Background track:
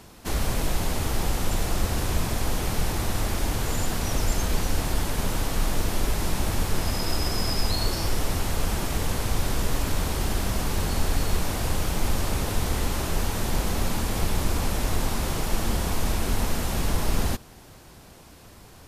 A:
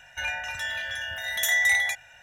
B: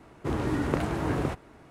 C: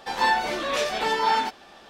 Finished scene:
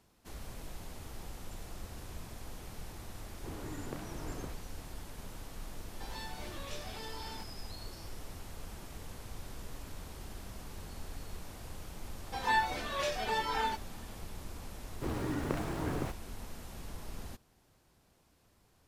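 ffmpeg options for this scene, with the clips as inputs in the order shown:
ffmpeg -i bed.wav -i cue0.wav -i cue1.wav -i cue2.wav -filter_complex "[2:a]asplit=2[link_01][link_02];[3:a]asplit=2[link_03][link_04];[0:a]volume=-20dB[link_05];[link_03]acrossover=split=330|3000[link_06][link_07][link_08];[link_07]acompressor=threshold=-31dB:ratio=6:attack=3.2:release=140:knee=2.83:detection=peak[link_09];[link_06][link_09][link_08]amix=inputs=3:normalize=0[link_10];[link_04]asplit=2[link_11][link_12];[link_12]adelay=3.1,afreqshift=-2.6[link_13];[link_11][link_13]amix=inputs=2:normalize=1[link_14];[link_02]aeval=exprs='val(0)*gte(abs(val(0)),0.0106)':channel_layout=same[link_15];[link_01]atrim=end=1.7,asetpts=PTS-STARTPTS,volume=-16dB,afade=type=in:duration=0.004:curve=hsin,afade=type=out:start_time=1.696:duration=0.004:curve=hsin,adelay=3190[link_16];[link_10]atrim=end=1.89,asetpts=PTS-STARTPTS,volume=-15.5dB,afade=type=in:duration=0.004:curve=hsin,afade=type=out:start_time=1.886:duration=0.004:curve=hsin,adelay=5940[link_17];[link_14]atrim=end=1.89,asetpts=PTS-STARTPTS,volume=-6.5dB,afade=type=in:duration=0.004:curve=hsin,afade=type=out:start_time=1.886:duration=0.004:curve=hsin,adelay=12260[link_18];[link_15]atrim=end=1.7,asetpts=PTS-STARTPTS,volume=-7.5dB,afade=type=in:duration=0.004:curve=hsin,afade=type=out:start_time=1.696:duration=0.004:curve=hsin,adelay=14770[link_19];[link_05][link_16][link_17][link_18][link_19]amix=inputs=5:normalize=0" out.wav

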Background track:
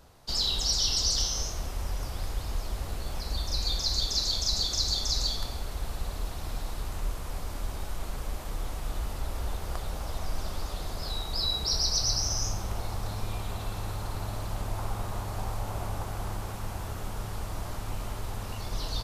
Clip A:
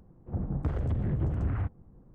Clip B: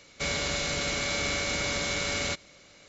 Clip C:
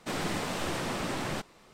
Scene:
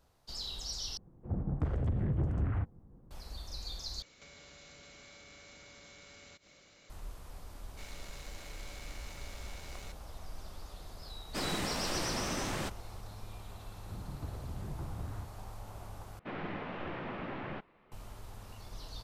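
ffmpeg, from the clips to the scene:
ffmpeg -i bed.wav -i cue0.wav -i cue1.wav -i cue2.wav -filter_complex "[1:a]asplit=2[link_01][link_02];[2:a]asplit=2[link_03][link_04];[3:a]asplit=2[link_05][link_06];[0:a]volume=-13dB[link_07];[link_03]acompressor=threshold=-47dB:ratio=6:attack=3.2:release=140:knee=1:detection=peak[link_08];[link_04]aeval=exprs='max(val(0),0)':channel_layout=same[link_09];[link_05]highshelf=frequency=4900:gain=4[link_10];[link_06]lowpass=frequency=2700:width=0.5412,lowpass=frequency=2700:width=1.3066[link_11];[link_07]asplit=4[link_12][link_13][link_14][link_15];[link_12]atrim=end=0.974[link_16];[link_01]atrim=end=2.14,asetpts=PTS-STARTPTS,volume=-2.5dB[link_17];[link_13]atrim=start=3.106:end=4.024[link_18];[link_08]atrim=end=2.88,asetpts=PTS-STARTPTS,volume=-6.5dB[link_19];[link_14]atrim=start=6.896:end=16.194[link_20];[link_11]atrim=end=1.73,asetpts=PTS-STARTPTS,volume=-7dB[link_21];[link_15]atrim=start=17.916[link_22];[link_09]atrim=end=2.88,asetpts=PTS-STARTPTS,volume=-17dB,afade=type=in:duration=0.004:curve=hsin,afade=type=out:start_time=2.876:duration=0.004:curve=hsin,adelay=7570[link_23];[link_10]atrim=end=1.73,asetpts=PTS-STARTPTS,volume=-3.5dB,afade=type=in:duration=0.004:curve=hsin,afade=type=out:start_time=1.726:duration=0.004:curve=hsin,adelay=11280[link_24];[link_02]atrim=end=2.14,asetpts=PTS-STARTPTS,volume=-13dB,afade=type=in:duration=0.004:curve=hsin,afade=type=out:start_time=2.136:duration=0.004:curve=hsin,adelay=13580[link_25];[link_16][link_17]acrossfade=duration=0.004:curve1=hsin:curve2=hsin[link_26];[link_26][link_18]acrossfade=duration=0.004:curve1=hsin:curve2=hsin[link_27];[link_27][link_19]acrossfade=duration=0.004:curve1=hsin:curve2=hsin[link_28];[link_28][link_20]acrossfade=duration=0.004:curve1=hsin:curve2=hsin[link_29];[link_29][link_21]acrossfade=duration=0.004:curve1=hsin:curve2=hsin[link_30];[link_30][link_22]acrossfade=duration=0.004:curve1=hsin:curve2=hsin[link_31];[link_31][link_23][link_24][link_25]amix=inputs=4:normalize=0" out.wav

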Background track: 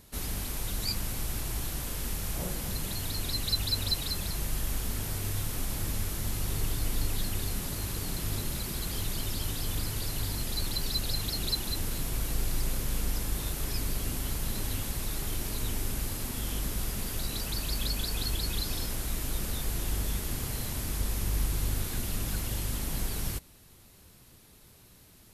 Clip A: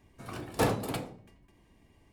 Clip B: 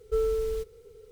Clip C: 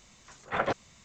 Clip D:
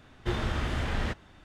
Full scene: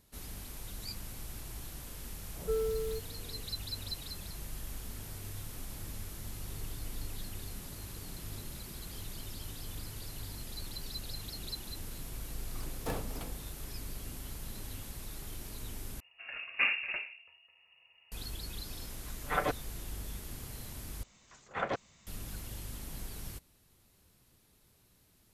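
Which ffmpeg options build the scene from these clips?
ffmpeg -i bed.wav -i cue0.wav -i cue1.wav -i cue2.wav -filter_complex "[1:a]asplit=2[link_01][link_02];[3:a]asplit=2[link_03][link_04];[0:a]volume=-10.5dB[link_05];[link_02]lowpass=frequency=2500:width_type=q:width=0.5098,lowpass=frequency=2500:width_type=q:width=0.6013,lowpass=frequency=2500:width_type=q:width=0.9,lowpass=frequency=2500:width_type=q:width=2.563,afreqshift=-2900[link_06];[link_03]aecho=1:1:6.7:1[link_07];[link_05]asplit=3[link_08][link_09][link_10];[link_08]atrim=end=16.004[link_11];[link_06]atrim=end=2.12,asetpts=PTS-STARTPTS,volume=-2.5dB[link_12];[link_09]atrim=start=18.116:end=21.034[link_13];[link_04]atrim=end=1.04,asetpts=PTS-STARTPTS,volume=-5.5dB[link_14];[link_10]atrim=start=22.066[link_15];[2:a]atrim=end=1.11,asetpts=PTS-STARTPTS,volume=-6dB,afade=type=in:duration=0.004:curve=hsin,afade=type=out:start_time=1.106:duration=0.004:curve=hsin,adelay=2360[link_16];[link_01]atrim=end=2.12,asetpts=PTS-STARTPTS,volume=-11dB,afade=type=in:duration=0.004:curve=hsin,afade=type=out:start_time=2.116:duration=0.004:curve=hsin,adelay=12270[link_17];[link_07]atrim=end=1.04,asetpts=PTS-STARTPTS,volume=-5.5dB,afade=type=in:duration=0.004:curve=hsin,afade=type=out:start_time=1.036:duration=0.004:curve=hsin,adelay=18780[link_18];[link_11][link_12]acrossfade=duration=0.004:curve1=hsin:curve2=hsin[link_19];[link_19][link_13]acrossfade=duration=0.004:curve1=hsin:curve2=hsin[link_20];[link_20][link_14]acrossfade=duration=0.004:curve1=hsin:curve2=hsin[link_21];[link_21][link_15]acrossfade=duration=0.004:curve1=hsin:curve2=hsin[link_22];[link_22][link_16][link_17][link_18]amix=inputs=4:normalize=0" out.wav

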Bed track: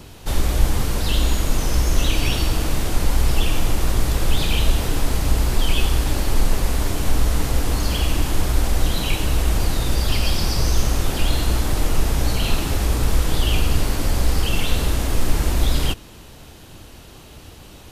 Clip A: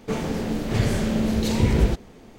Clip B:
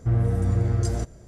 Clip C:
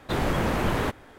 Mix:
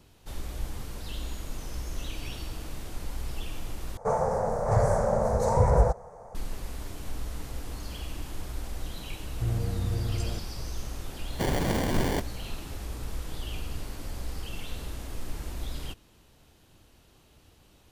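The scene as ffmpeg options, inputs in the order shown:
ffmpeg -i bed.wav -i cue0.wav -i cue1.wav -i cue2.wav -filter_complex "[0:a]volume=-17dB[link_01];[1:a]firequalizer=gain_entry='entry(130,0);entry(290,-22);entry(500,10);entry(910,11);entry(1600,-2);entry(2900,-27);entry(5800,-4);entry(9700,-1);entry(15000,-17)':delay=0.05:min_phase=1[link_02];[3:a]acrusher=samples=34:mix=1:aa=0.000001[link_03];[link_01]asplit=2[link_04][link_05];[link_04]atrim=end=3.974[link_06];[link_02]atrim=end=2.38,asetpts=PTS-STARTPTS,volume=-2dB[link_07];[link_05]atrim=start=6.346[link_08];[2:a]atrim=end=1.27,asetpts=PTS-STARTPTS,volume=-8dB,afade=type=in:duration=0.004:curve=hsin,afade=type=out:start_time=1.266:duration=0.004:curve=hsin,adelay=9350[link_09];[link_03]atrim=end=1.18,asetpts=PTS-STARTPTS,volume=-2dB,afade=type=in:duration=0.004:curve=hsin,afade=type=out:start_time=1.176:duration=0.004:curve=hsin,adelay=498330S[link_10];[link_06][link_07]acrossfade=duration=0.004:curve1=hsin:curve2=hsin[link_11];[link_11][link_08]acrossfade=duration=0.004:curve1=hsin:curve2=hsin[link_12];[link_12][link_09][link_10]amix=inputs=3:normalize=0" out.wav

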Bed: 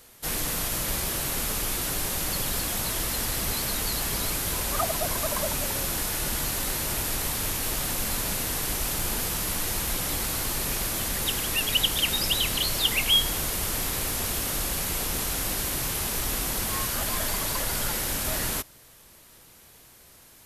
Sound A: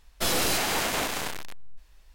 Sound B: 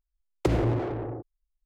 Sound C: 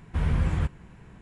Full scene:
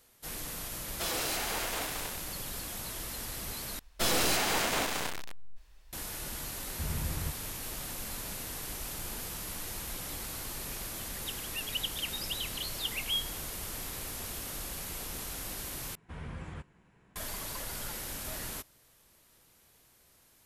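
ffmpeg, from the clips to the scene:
ffmpeg -i bed.wav -i cue0.wav -i cue1.wav -i cue2.wav -filter_complex "[1:a]asplit=2[link_01][link_02];[3:a]asplit=2[link_03][link_04];[0:a]volume=-11dB[link_05];[link_01]highpass=300[link_06];[link_03]acrusher=bits=10:mix=0:aa=0.000001[link_07];[link_04]lowshelf=frequency=140:gain=-11.5[link_08];[link_05]asplit=3[link_09][link_10][link_11];[link_09]atrim=end=3.794[link_12];[link_02]atrim=end=2.14,asetpts=PTS-STARTPTS,volume=-2.5dB[link_13];[link_10]atrim=start=5.926:end=15.954[link_14];[link_08]atrim=end=1.21,asetpts=PTS-STARTPTS,volume=-10.5dB[link_15];[link_11]atrim=start=17.156[link_16];[link_06]atrim=end=2.14,asetpts=PTS-STARTPTS,volume=-8dB,afade=type=in:duration=0.004:curve=hsin,afade=type=out:start_time=2.136:duration=0.004:curve=hsin,adelay=790[link_17];[link_07]atrim=end=1.21,asetpts=PTS-STARTPTS,volume=-11dB,afade=type=in:duration=0.004:curve=hsin,afade=type=out:start_time=1.206:duration=0.004:curve=hsin,adelay=6640[link_18];[link_12][link_13]acrossfade=duration=0.004:curve1=hsin:curve2=hsin[link_19];[link_19][link_14]acrossfade=duration=0.004:curve1=hsin:curve2=hsin[link_20];[link_20][link_15]acrossfade=duration=0.004:curve1=hsin:curve2=hsin[link_21];[link_21][link_16]acrossfade=duration=0.004:curve1=hsin:curve2=hsin[link_22];[link_22][link_17][link_18]amix=inputs=3:normalize=0" out.wav

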